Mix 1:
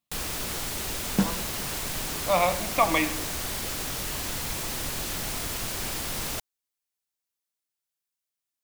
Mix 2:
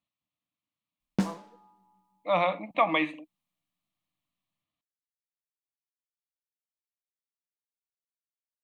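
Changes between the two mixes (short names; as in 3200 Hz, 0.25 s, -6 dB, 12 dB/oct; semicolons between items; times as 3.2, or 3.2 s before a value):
first sound: muted; reverb: off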